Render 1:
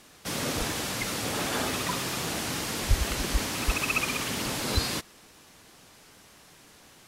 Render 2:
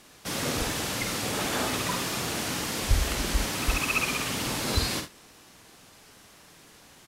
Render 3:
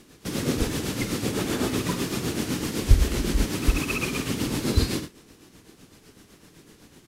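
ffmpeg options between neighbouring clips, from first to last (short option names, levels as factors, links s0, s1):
-af "aecho=1:1:50|75:0.447|0.188"
-af "acrusher=bits=9:mode=log:mix=0:aa=0.000001,lowshelf=f=500:t=q:w=1.5:g=8,tremolo=f=7.9:d=0.52"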